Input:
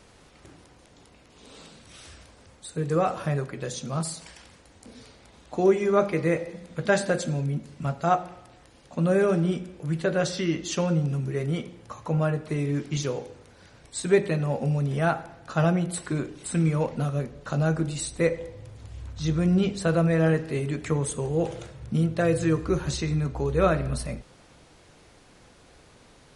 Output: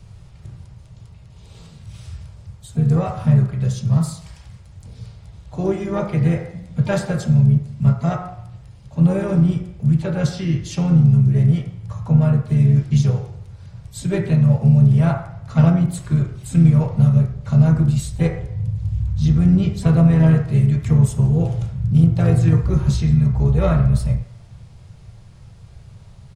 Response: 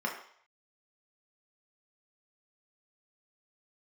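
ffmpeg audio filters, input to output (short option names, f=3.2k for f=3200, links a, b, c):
-filter_complex "[0:a]lowshelf=f=170:t=q:w=3:g=13,acrossover=split=180|3000[a][b][c];[a]acompressor=threshold=-17dB:ratio=8[d];[d][b][c]amix=inputs=3:normalize=0,aeval=exprs='0.422*(cos(1*acos(clip(val(0)/0.422,-1,1)))-cos(1*PI/2))+0.0106*(cos(2*acos(clip(val(0)/0.422,-1,1)))-cos(2*PI/2))+0.0335*(cos(3*acos(clip(val(0)/0.422,-1,1)))-cos(3*PI/2))+0.0075*(cos(5*acos(clip(val(0)/0.422,-1,1)))-cos(5*PI/2))+0.00266*(cos(7*acos(clip(val(0)/0.422,-1,1)))-cos(7*PI/2))':c=same,asplit=3[e][f][g];[f]asetrate=37084,aresample=44100,atempo=1.18921,volume=-9dB[h];[g]asetrate=66075,aresample=44100,atempo=0.66742,volume=-15dB[i];[e][h][i]amix=inputs=3:normalize=0,asplit=2[j][k];[1:a]atrim=start_sample=2205,asetrate=43659,aresample=44100[l];[k][l]afir=irnorm=-1:irlink=0,volume=-10.5dB[m];[j][m]amix=inputs=2:normalize=0,volume=1dB"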